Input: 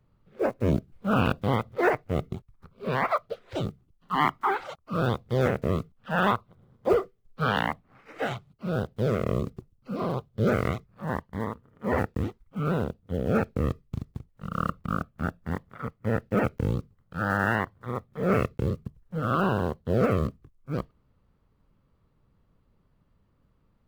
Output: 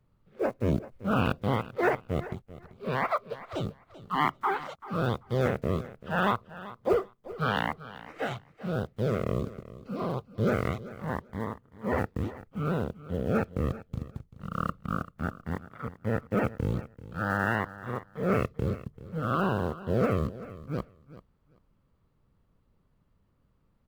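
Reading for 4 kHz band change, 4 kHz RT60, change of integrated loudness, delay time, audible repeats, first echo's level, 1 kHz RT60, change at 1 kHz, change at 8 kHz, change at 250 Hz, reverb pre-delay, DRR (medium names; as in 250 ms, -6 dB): -2.5 dB, no reverb, -2.5 dB, 388 ms, 2, -16.5 dB, no reverb, -2.5 dB, no reading, -2.5 dB, no reverb, no reverb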